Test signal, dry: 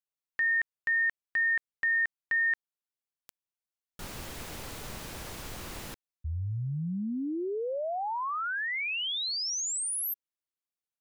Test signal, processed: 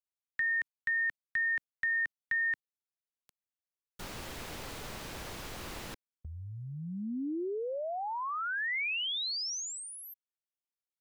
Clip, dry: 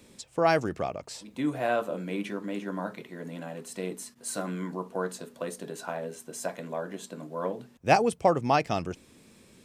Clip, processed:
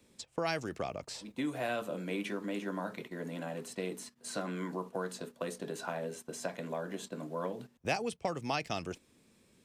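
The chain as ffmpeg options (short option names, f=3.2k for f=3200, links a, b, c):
-filter_complex "[0:a]acrossover=split=250|2100|5800[a][b][c][d];[a]acompressor=threshold=-44dB:ratio=4[e];[b]acompressor=threshold=-35dB:ratio=4[f];[c]acompressor=threshold=-35dB:ratio=4[g];[d]acompressor=threshold=-51dB:ratio=4[h];[e][f][g][h]amix=inputs=4:normalize=0,agate=range=-10dB:threshold=-50dB:ratio=16:release=116:detection=peak"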